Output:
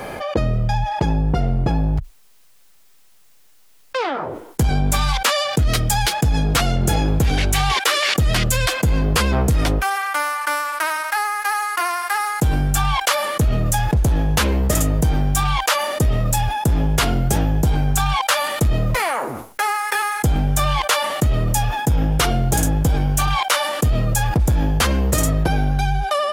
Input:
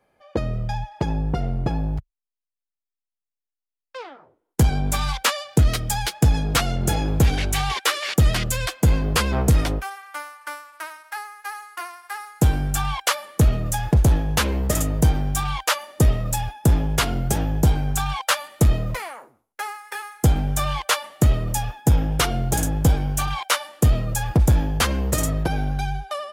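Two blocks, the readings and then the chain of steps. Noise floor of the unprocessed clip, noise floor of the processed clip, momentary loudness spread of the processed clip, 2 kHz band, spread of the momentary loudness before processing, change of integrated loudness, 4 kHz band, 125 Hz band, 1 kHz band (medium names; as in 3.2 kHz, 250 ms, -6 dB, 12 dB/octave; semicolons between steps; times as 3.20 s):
under -85 dBFS, -50 dBFS, 3 LU, +6.0 dB, 14 LU, +2.5 dB, +4.5 dB, +2.0 dB, +7.0 dB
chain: level flattener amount 70%; trim -2.5 dB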